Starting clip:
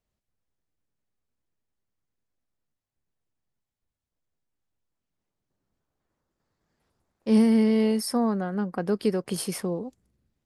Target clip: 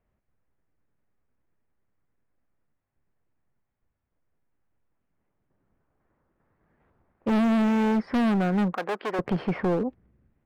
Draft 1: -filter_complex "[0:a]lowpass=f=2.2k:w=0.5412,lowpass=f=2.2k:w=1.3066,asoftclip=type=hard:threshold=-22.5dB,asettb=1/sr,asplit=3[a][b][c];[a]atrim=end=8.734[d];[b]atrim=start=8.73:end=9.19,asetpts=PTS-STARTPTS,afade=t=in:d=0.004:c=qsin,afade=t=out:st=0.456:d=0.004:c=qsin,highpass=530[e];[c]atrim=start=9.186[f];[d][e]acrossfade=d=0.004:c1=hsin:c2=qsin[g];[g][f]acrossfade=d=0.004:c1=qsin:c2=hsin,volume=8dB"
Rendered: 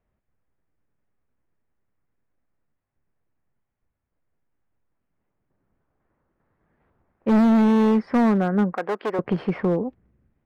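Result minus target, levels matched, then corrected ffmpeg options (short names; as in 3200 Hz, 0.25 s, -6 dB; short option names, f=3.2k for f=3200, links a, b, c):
hard clip: distortion -4 dB
-filter_complex "[0:a]lowpass=f=2.2k:w=0.5412,lowpass=f=2.2k:w=1.3066,asoftclip=type=hard:threshold=-28.5dB,asettb=1/sr,asplit=3[a][b][c];[a]atrim=end=8.734[d];[b]atrim=start=8.73:end=9.19,asetpts=PTS-STARTPTS,afade=t=in:d=0.004:c=qsin,afade=t=out:st=0.456:d=0.004:c=qsin,highpass=530[e];[c]atrim=start=9.186[f];[d][e]acrossfade=d=0.004:c1=hsin:c2=qsin[g];[g][f]acrossfade=d=0.004:c1=qsin:c2=hsin,volume=8dB"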